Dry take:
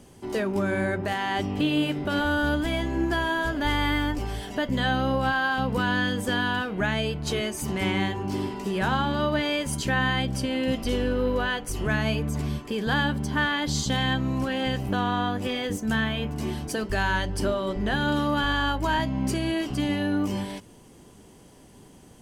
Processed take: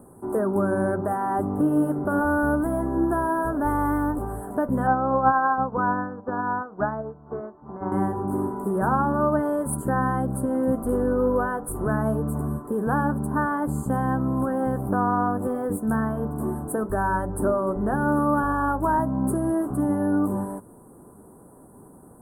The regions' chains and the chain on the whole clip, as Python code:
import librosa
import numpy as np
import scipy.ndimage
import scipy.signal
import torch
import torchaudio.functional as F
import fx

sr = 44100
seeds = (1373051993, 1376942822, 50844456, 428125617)

y = fx.chain(x, sr, fx.lowpass(hz=2000.0, slope=24),
    fx.peak_eq(hz=940.0, db=7.0, octaves=1.8),
    fx.upward_expand(threshold_db=-30.0, expansion=2.5), at=(4.87, 7.92))
y = scipy.signal.sosfilt(scipy.signal.ellip(3, 1.0, 40, [1300.0, 9400.0], 'bandstop', fs=sr, output='sos'), y)
y = fx.low_shelf(y, sr, hz=110.0, db=-10.0)
y = y * 10.0 ** (5.0 / 20.0)